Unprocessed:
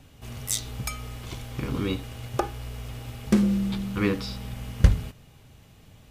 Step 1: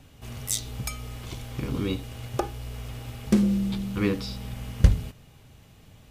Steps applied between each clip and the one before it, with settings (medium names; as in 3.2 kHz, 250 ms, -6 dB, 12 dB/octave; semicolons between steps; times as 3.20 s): dynamic bell 1.4 kHz, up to -4 dB, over -46 dBFS, Q 0.83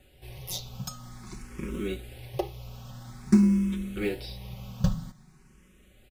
in parallel at -11 dB: sample-and-hold 37×; on the sum: comb 5.4 ms, depth 75%; barber-pole phaser +0.5 Hz; trim -4 dB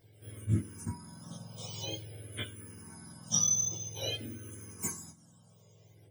spectrum inverted on a logarithmic axis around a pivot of 1.1 kHz; chorus voices 4, 0.64 Hz, delay 18 ms, depth 1 ms; attacks held to a fixed rise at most 410 dB/s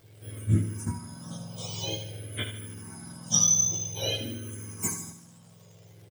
crackle 410 per s -56 dBFS; on a send: feedback delay 76 ms, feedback 48%, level -10 dB; on the sum: trim +5.5 dB